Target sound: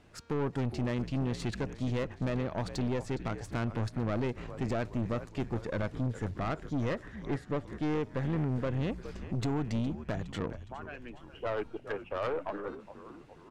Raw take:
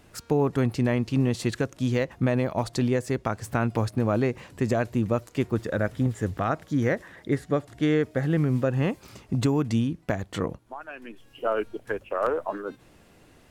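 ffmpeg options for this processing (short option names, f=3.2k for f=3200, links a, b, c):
-filter_complex "[0:a]asplit=6[a][b][c][d][e][f];[b]adelay=413,afreqshift=-72,volume=-15dB[g];[c]adelay=826,afreqshift=-144,volume=-20.2dB[h];[d]adelay=1239,afreqshift=-216,volume=-25.4dB[i];[e]adelay=1652,afreqshift=-288,volume=-30.6dB[j];[f]adelay=2065,afreqshift=-360,volume=-35.8dB[k];[a][g][h][i][j][k]amix=inputs=6:normalize=0,aeval=exprs='(tanh(15.8*val(0)+0.45)-tanh(0.45))/15.8':c=same,adynamicsmooth=sensitivity=2.5:basefreq=7.1k,volume=-3dB"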